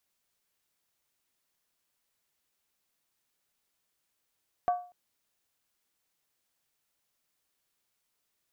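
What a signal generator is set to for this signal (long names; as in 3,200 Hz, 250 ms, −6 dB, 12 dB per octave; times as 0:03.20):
struck skin length 0.24 s, lowest mode 715 Hz, decay 0.39 s, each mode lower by 12 dB, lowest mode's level −20.5 dB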